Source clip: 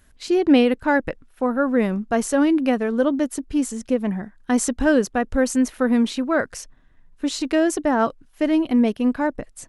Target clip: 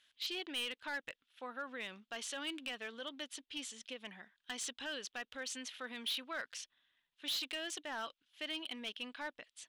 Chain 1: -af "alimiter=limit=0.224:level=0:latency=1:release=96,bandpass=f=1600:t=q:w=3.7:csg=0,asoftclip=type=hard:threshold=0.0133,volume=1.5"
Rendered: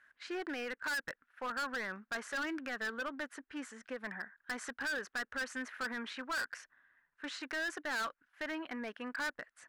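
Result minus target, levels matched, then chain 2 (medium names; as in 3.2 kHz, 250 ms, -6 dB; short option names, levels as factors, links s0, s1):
4 kHz band -9.0 dB
-af "alimiter=limit=0.224:level=0:latency=1:release=96,bandpass=f=3300:t=q:w=3.7:csg=0,asoftclip=type=hard:threshold=0.0133,volume=1.5"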